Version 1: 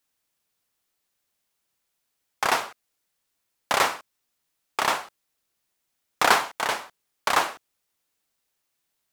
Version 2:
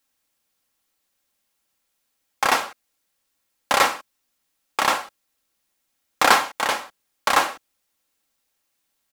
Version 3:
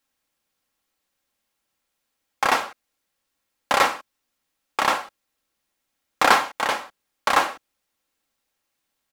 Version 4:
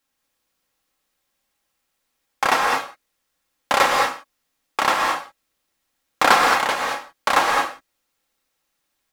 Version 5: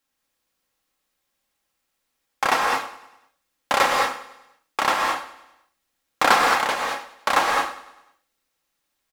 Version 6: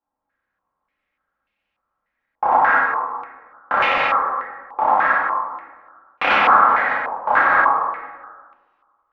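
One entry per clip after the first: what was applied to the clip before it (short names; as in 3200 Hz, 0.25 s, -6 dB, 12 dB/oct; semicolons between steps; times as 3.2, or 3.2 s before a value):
comb 3.7 ms, depth 35%; gain +3 dB
high shelf 4600 Hz -6 dB
non-linear reverb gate 0.24 s rising, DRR 1 dB; gain +1 dB
feedback echo 0.1 s, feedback 53%, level -17 dB; gain -2 dB
air absorption 51 m; plate-style reverb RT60 1.5 s, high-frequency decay 0.45×, DRR -5 dB; stepped low-pass 3.4 Hz 900–2600 Hz; gain -6.5 dB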